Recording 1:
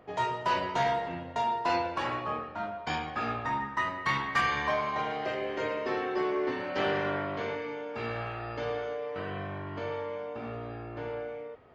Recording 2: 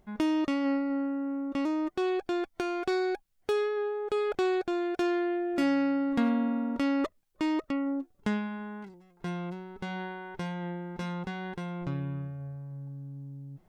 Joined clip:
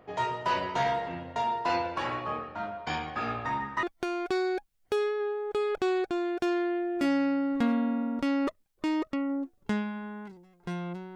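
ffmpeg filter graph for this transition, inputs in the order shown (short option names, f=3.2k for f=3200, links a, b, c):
-filter_complex "[0:a]apad=whole_dur=11.15,atrim=end=11.15,atrim=end=3.832[a];[1:a]atrim=start=2.398:end=9.72[b];[a][b]acrossfade=d=0.004:c1=hsin:c2=hsin"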